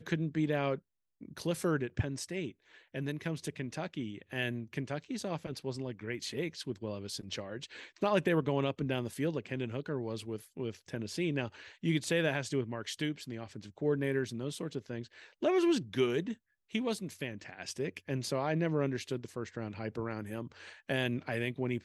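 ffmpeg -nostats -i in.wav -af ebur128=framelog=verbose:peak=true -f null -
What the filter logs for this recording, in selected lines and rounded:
Integrated loudness:
  I:         -35.5 LUFS
  Threshold: -45.7 LUFS
Loudness range:
  LRA:         4.7 LU
  Threshold: -55.7 LUFS
  LRA low:   -38.6 LUFS
  LRA high:  -33.9 LUFS
True peak:
  Peak:      -16.4 dBFS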